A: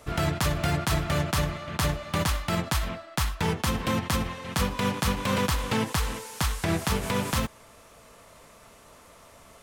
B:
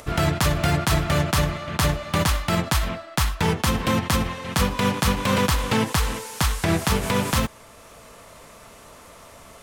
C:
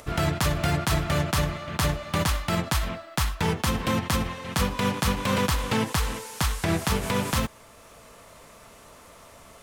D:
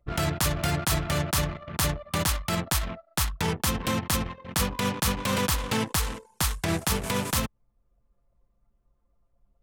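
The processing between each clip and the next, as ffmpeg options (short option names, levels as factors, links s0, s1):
-af "acompressor=mode=upward:threshold=0.00501:ratio=2.5,volume=1.78"
-af "acrusher=bits=10:mix=0:aa=0.000001,volume=0.668"
-af "anlmdn=15.8,aemphasis=mode=production:type=cd,aeval=exprs='clip(val(0),-1,0.141)':c=same,volume=0.794"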